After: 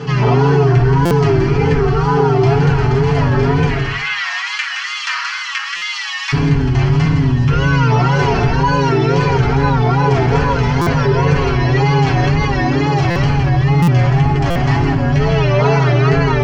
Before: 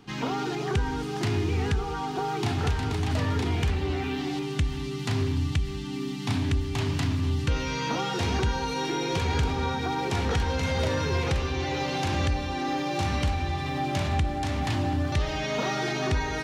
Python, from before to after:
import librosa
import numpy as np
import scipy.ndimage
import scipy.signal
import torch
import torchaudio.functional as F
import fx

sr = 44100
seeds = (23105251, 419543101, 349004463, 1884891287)

y = fx.octave_divider(x, sr, octaves=2, level_db=-6.0)
y = fx.rider(y, sr, range_db=10, speed_s=0.5)
y = fx.steep_highpass(y, sr, hz=1200.0, slope=36, at=(3.65, 6.32))
y = y + 10.0 ** (-8.0 / 20.0) * np.pad(y, (int(168 * sr / 1000.0), 0))[:len(y)]
y = fx.rev_fdn(y, sr, rt60_s=0.67, lf_ratio=0.8, hf_ratio=0.35, size_ms=42.0, drr_db=-7.0)
y = fx.wow_flutter(y, sr, seeds[0], rate_hz=2.1, depth_cents=120.0)
y = scipy.signal.sosfilt(scipy.signal.butter(4, 5800.0, 'lowpass', fs=sr, output='sos'), y)
y = fx.notch(y, sr, hz=3700.0, q=5.1)
y = y + 0.76 * np.pad(y, (int(7.2 * sr / 1000.0), 0))[:len(y)]
y = fx.buffer_glitch(y, sr, at_s=(1.05, 5.76, 10.81, 13.1, 13.82, 14.5), block=256, repeats=9)
y = fx.env_flatten(y, sr, amount_pct=50)
y = F.gain(torch.from_numpy(y), -1.5).numpy()